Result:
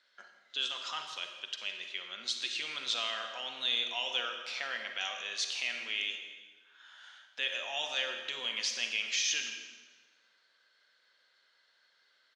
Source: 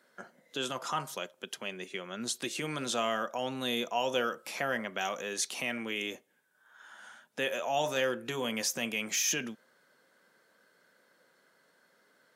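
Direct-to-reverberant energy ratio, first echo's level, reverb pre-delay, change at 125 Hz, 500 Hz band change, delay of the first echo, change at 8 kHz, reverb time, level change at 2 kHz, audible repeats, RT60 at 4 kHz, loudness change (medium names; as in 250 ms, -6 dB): 5.0 dB, -16.5 dB, 38 ms, under -20 dB, -13.0 dB, 163 ms, -4.5 dB, 1.4 s, 0.0 dB, 1, 1.2 s, -0.5 dB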